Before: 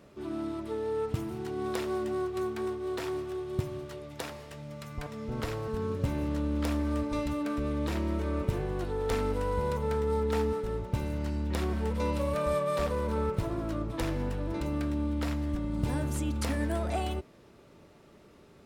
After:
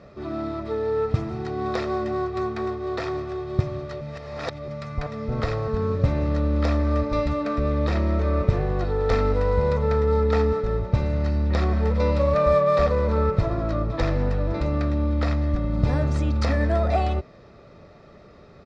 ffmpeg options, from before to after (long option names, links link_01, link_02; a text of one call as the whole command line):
ffmpeg -i in.wav -filter_complex "[0:a]asplit=3[link_01][link_02][link_03];[link_01]atrim=end=4.012[link_04];[link_02]atrim=start=4.008:end=4.682,asetpts=PTS-STARTPTS,areverse[link_05];[link_03]atrim=start=4.678[link_06];[link_04][link_05]acrossfade=duration=0.004:curve1=hsin:curve2=hsin[link_07];[link_07][link_06]acrossfade=duration=0.004:curve1=hsin:curve2=hsin,lowpass=frequency=5000:width=0.5412,lowpass=frequency=5000:width=1.3066,equalizer=frequency=3000:width=3.9:gain=-10,aecho=1:1:1.6:0.42,volume=8dB" out.wav